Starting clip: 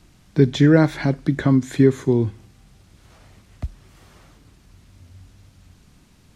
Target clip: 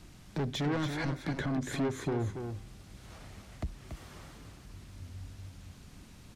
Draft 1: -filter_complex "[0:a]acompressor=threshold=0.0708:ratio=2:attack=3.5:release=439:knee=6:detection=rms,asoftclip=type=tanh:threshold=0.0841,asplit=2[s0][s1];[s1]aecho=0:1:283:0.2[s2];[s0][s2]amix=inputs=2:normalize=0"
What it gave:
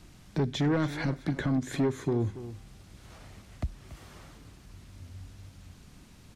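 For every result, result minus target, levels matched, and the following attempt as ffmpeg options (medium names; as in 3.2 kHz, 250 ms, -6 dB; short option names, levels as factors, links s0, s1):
echo-to-direct -7 dB; saturation: distortion -6 dB
-filter_complex "[0:a]acompressor=threshold=0.0708:ratio=2:attack=3.5:release=439:knee=6:detection=rms,asoftclip=type=tanh:threshold=0.0841,asplit=2[s0][s1];[s1]aecho=0:1:283:0.447[s2];[s0][s2]amix=inputs=2:normalize=0"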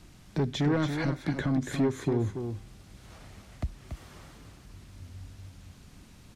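saturation: distortion -6 dB
-filter_complex "[0:a]acompressor=threshold=0.0708:ratio=2:attack=3.5:release=439:knee=6:detection=rms,asoftclip=type=tanh:threshold=0.0355,asplit=2[s0][s1];[s1]aecho=0:1:283:0.447[s2];[s0][s2]amix=inputs=2:normalize=0"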